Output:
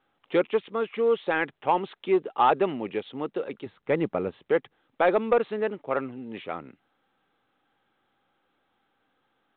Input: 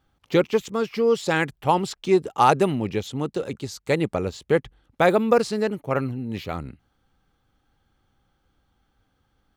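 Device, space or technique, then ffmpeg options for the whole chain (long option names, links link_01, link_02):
telephone: -filter_complex "[0:a]asettb=1/sr,asplit=3[link_01][link_02][link_03];[link_01]atrim=end=3.664[link_04];[link_02]atrim=start=3.66:end=4.44,asetpts=PTS-STARTPTS,afade=type=in:duration=0.004:curve=qsin,afade=type=out:start_time=0.776:duration=0.004:curve=qsin,bass=frequency=250:gain=9,treble=frequency=4000:gain=-14[link_05];[link_03]atrim=start=4.436[link_06];[link_04][link_05]acrossfade=duration=0.004:curve1=hsin:curve2=qsin[link_07];[link_07][link_06]acrossfade=duration=0.004:curve1=qsin:curve2=hsin,highpass=310,lowpass=3100,asoftclip=type=tanh:threshold=-9dB,volume=-1.5dB" -ar 8000 -c:a pcm_mulaw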